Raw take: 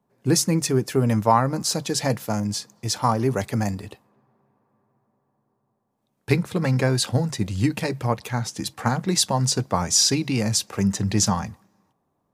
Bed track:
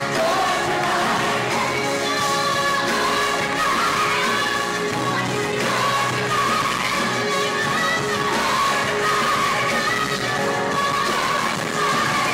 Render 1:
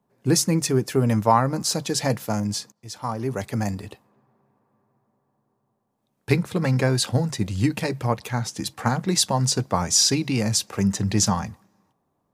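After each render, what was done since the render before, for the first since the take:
0:02.72–0:03.79: fade in, from −19 dB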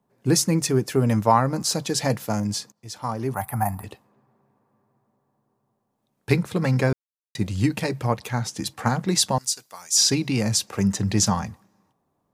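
0:03.34–0:03.84: drawn EQ curve 130 Hz 0 dB, 480 Hz −15 dB, 780 Hz +12 dB, 4,400 Hz −14 dB, 6,700 Hz −13 dB, 11,000 Hz +15 dB
0:06.93–0:07.35: silence
0:09.38–0:09.97: first difference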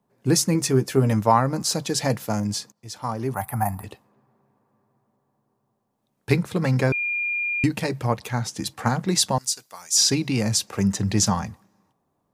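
0:00.53–0:01.13: double-tracking delay 15 ms −10 dB
0:06.92–0:07.64: beep over 2,410 Hz −22.5 dBFS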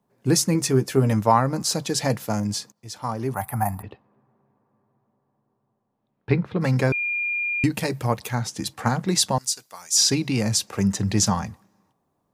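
0:03.82–0:06.61: high-frequency loss of the air 320 metres
0:07.74–0:08.35: high-shelf EQ 9,200 Hz +9 dB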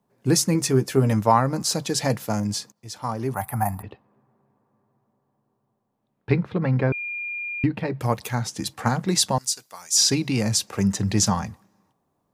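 0:06.58–0:08.01: high-frequency loss of the air 400 metres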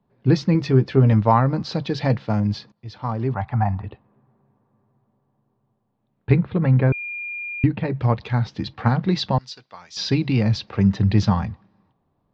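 Butterworth low-pass 4,300 Hz 36 dB per octave
low-shelf EQ 130 Hz +12 dB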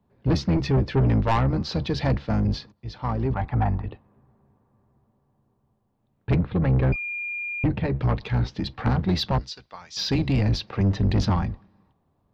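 sub-octave generator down 1 octave, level −5 dB
soft clipping −16 dBFS, distortion −10 dB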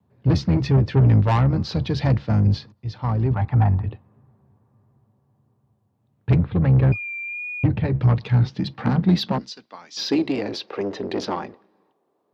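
high-pass filter sweep 100 Hz → 390 Hz, 0:07.95–0:10.54
pitch vibrato 1.5 Hz 32 cents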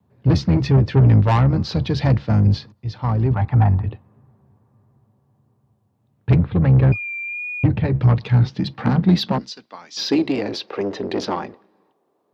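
level +2.5 dB

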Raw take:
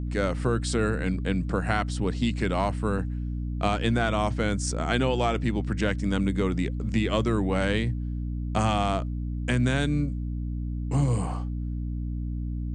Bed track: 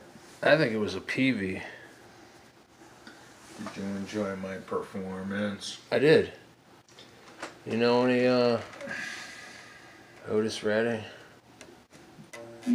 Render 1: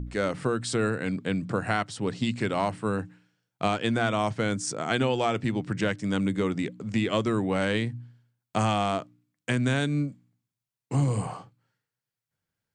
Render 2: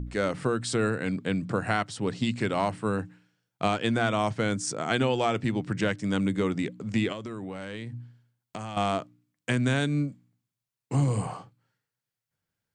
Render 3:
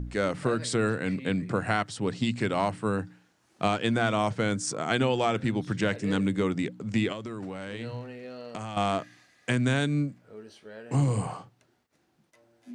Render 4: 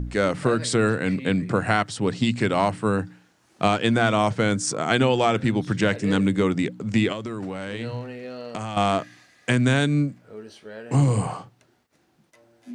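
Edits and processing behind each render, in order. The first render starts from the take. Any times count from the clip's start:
hum removal 60 Hz, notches 5
0:07.12–0:08.77: downward compressor 8 to 1, threshold −33 dBFS
mix in bed track −18 dB
level +5.5 dB

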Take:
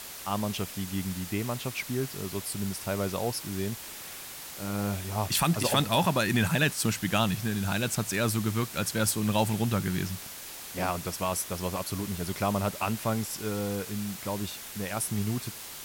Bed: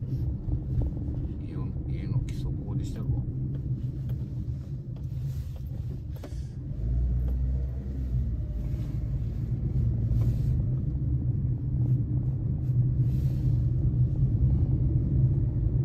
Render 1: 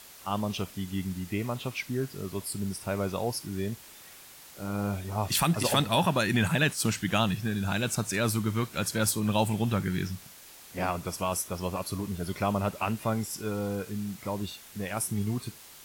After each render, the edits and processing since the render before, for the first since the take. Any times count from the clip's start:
noise reduction from a noise print 8 dB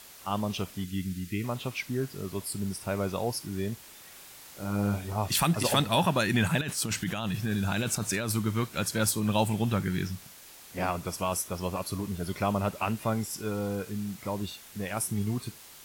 0:00.84–0:01.44: Butterworth band-reject 770 Hz, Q 0.6
0:04.11–0:05.13: double-tracking delay 39 ms −5.5 dB
0:06.61–0:08.32: compressor whose output falls as the input rises −30 dBFS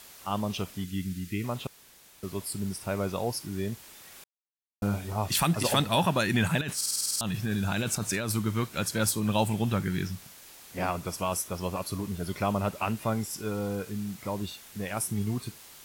0:01.67–0:02.23: fill with room tone
0:04.24–0:04.82: silence
0:06.76: stutter in place 0.05 s, 9 plays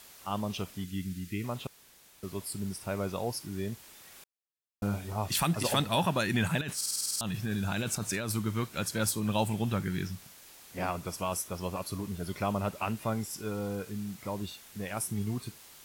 level −3 dB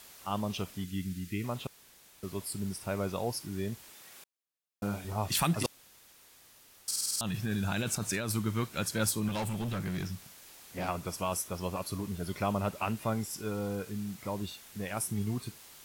0:03.90–0:05.05: high-pass filter 160 Hz 6 dB per octave
0:05.66–0:06.88: fill with room tone
0:09.28–0:10.88: hard clipping −30.5 dBFS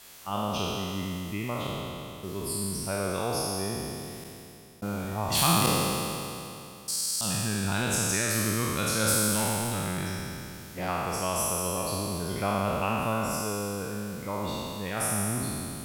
peak hold with a decay on every bin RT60 2.87 s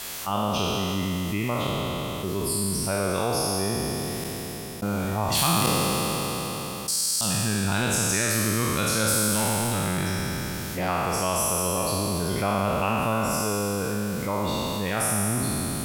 envelope flattener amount 50%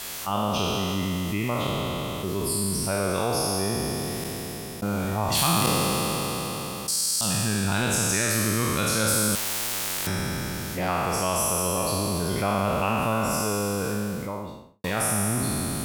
0:09.35–0:10.07: every bin compressed towards the loudest bin 10 to 1
0:13.91–0:14.84: fade out and dull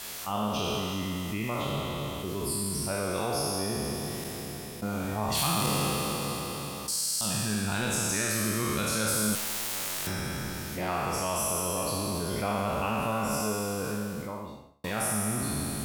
tuned comb filter 71 Hz, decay 0.52 s, harmonics all, mix 70%
in parallel at −8.5 dB: soft clipping −26.5 dBFS, distortion −16 dB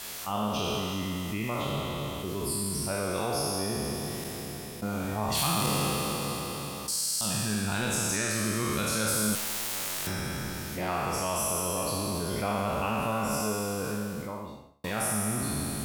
0:08.15–0:08.72: parametric band 13,000 Hz −12 dB → −4 dB 0.4 octaves

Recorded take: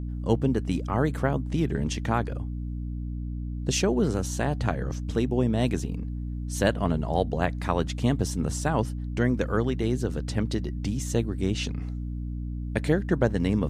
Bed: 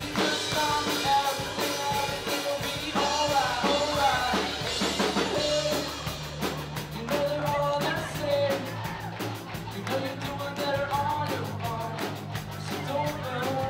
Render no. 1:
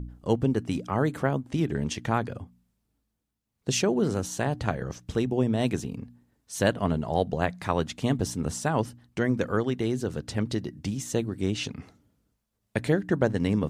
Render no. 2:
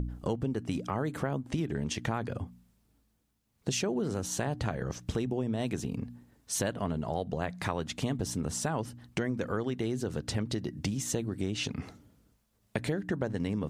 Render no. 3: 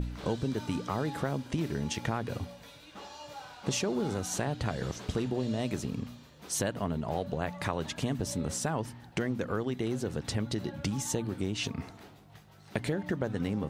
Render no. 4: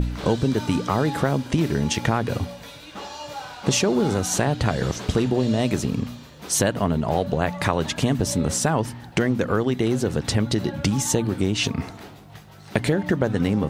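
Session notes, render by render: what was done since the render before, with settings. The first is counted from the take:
hum removal 60 Hz, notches 5
in parallel at +1 dB: brickwall limiter −21 dBFS, peak gain reduction 11.5 dB; on the sum: downward compressor 4 to 1, threshold −30 dBFS, peak gain reduction 13 dB
mix in bed −20.5 dB
level +10.5 dB

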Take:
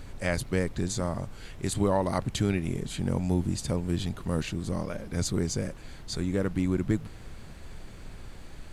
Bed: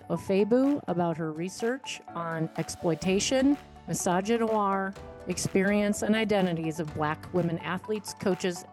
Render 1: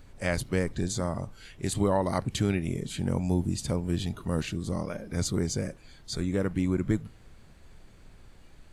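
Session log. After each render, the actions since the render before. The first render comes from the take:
noise reduction from a noise print 9 dB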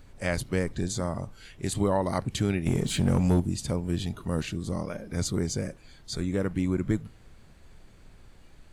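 0:02.66–0:03.40: leveller curve on the samples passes 2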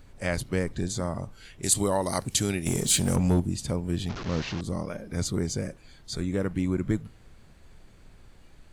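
0:01.63–0:03.16: bass and treble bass −3 dB, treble +14 dB
0:04.09–0:04.61: linear delta modulator 32 kbit/s, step −30 dBFS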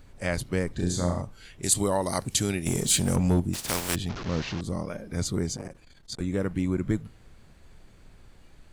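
0:00.75–0:01.22: flutter between parallel walls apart 5.8 metres, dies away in 0.47 s
0:03.53–0:03.94: compressing power law on the bin magnitudes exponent 0.29
0:05.56–0:06.20: saturating transformer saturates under 790 Hz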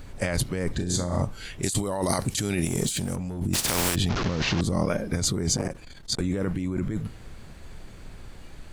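in parallel at −0.5 dB: brickwall limiter −17.5 dBFS, peak gain reduction 9 dB
on the sum: compressor whose output falls as the input rises −26 dBFS, ratio −1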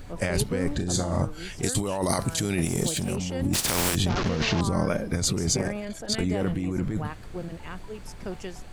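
mix in bed −8.5 dB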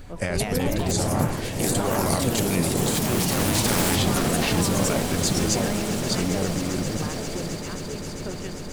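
echo that builds up and dies away 133 ms, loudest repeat 8, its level −16 dB
delay with pitch and tempo change per echo 221 ms, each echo +3 semitones, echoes 3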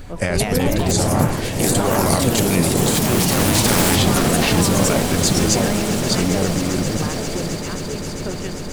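level +6 dB

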